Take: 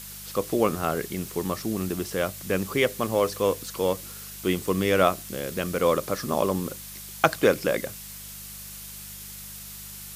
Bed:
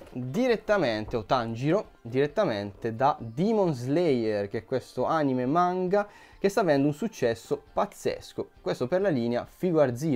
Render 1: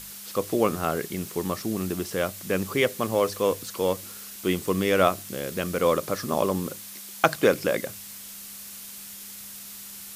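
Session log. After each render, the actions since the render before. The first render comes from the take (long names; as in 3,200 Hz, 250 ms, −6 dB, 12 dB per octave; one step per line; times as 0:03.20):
hum removal 50 Hz, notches 3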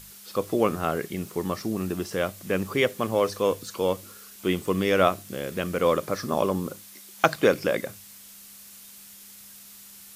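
noise reduction from a noise print 6 dB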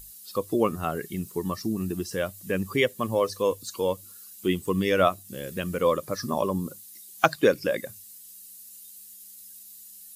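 spectral dynamics exaggerated over time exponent 1.5
in parallel at −1.5 dB: downward compressor, threshold −33 dBFS, peak gain reduction 17 dB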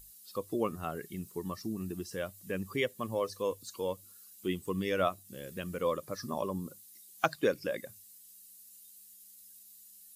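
level −8.5 dB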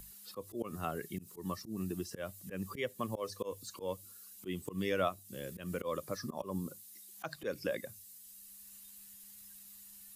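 volume swells 144 ms
multiband upward and downward compressor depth 40%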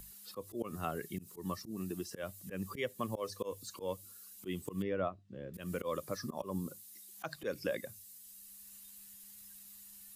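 0:01.71–0:02.23: low-shelf EQ 110 Hz −9 dB
0:04.82–0:05.54: head-to-tape spacing loss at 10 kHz 43 dB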